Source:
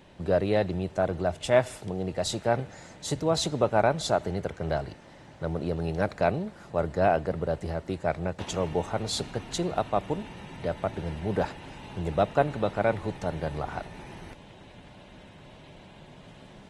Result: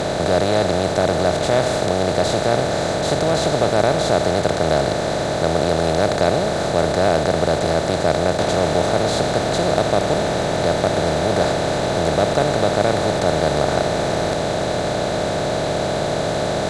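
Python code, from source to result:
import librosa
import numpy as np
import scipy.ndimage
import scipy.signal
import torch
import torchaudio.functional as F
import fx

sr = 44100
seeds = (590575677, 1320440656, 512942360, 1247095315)

y = fx.bin_compress(x, sr, power=0.2)
y = fx.low_shelf(y, sr, hz=350.0, db=4.5)
y = y * 10.0 ** (-2.0 / 20.0)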